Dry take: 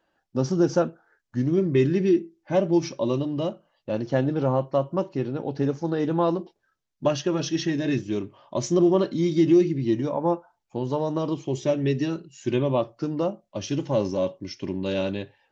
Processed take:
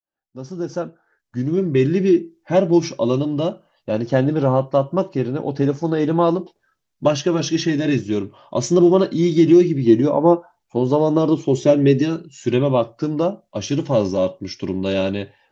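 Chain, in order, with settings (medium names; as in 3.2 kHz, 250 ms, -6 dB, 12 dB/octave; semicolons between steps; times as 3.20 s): fade-in on the opening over 2.32 s; 9.86–12.02 s: dynamic bell 350 Hz, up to +5 dB, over -35 dBFS, Q 0.74; trim +6 dB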